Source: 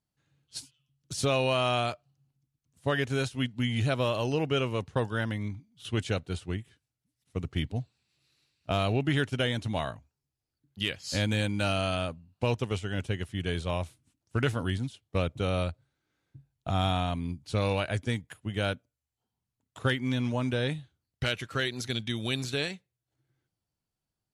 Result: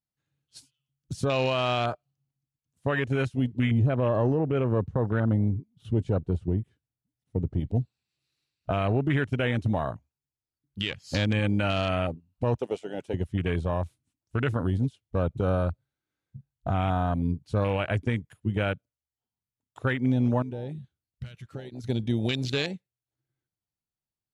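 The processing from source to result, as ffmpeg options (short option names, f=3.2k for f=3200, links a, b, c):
-filter_complex "[0:a]asettb=1/sr,asplit=3[a][b][c];[a]atrim=end=3.714[d];[b]atrim=start=3.71:end=7.6,asetpts=PTS-STARTPTS,afade=t=in:d=0.004:c=qsin,afade=t=out:st=3.886:d=0.004:c=qsin,tiltshelf=f=1.3k:g=6[e];[c]atrim=start=7.596[f];[d][e]acrossfade=d=0.004:c1=hsin:c2=qsin[g];[g][f]acrossfade=d=0.004:c1=qsin:c2=hsin,asettb=1/sr,asplit=3[h][i][j];[h]atrim=end=12.554[k];[i]atrim=start=12.55:end=13.14,asetpts=PTS-STARTPTS,afade=t=in:d=0.004:c=qsin,afade=t=out:st=0.586:d=0.004:c=qsin,highpass=400[l];[j]atrim=start=13.136[m];[k][l]acrossfade=d=0.004:c1=hsin:c2=qsin[n];[n][m]acrossfade=d=0.004:c1=qsin:c2=hsin,asettb=1/sr,asplit=3[o][p][q];[o]atrim=end=20.424[r];[p]atrim=start=20.42:end=21.84,asetpts=PTS-STARTPTS,afade=t=in:d=0.004:c=qsin,afade=t=out:st=1.416:d=0.004:c=qsin,acompressor=threshold=-44dB:ratio=2.5:attack=3.2:release=140:knee=1:detection=peak[s];[q]atrim=start=21.836[t];[r][s]acrossfade=d=0.004:c1=hsin:c2=qsin[u];[u][t]acrossfade=d=0.004:c1=qsin:c2=hsin,afwtdn=0.0178,alimiter=limit=-24dB:level=0:latency=1:release=141,volume=7.5dB"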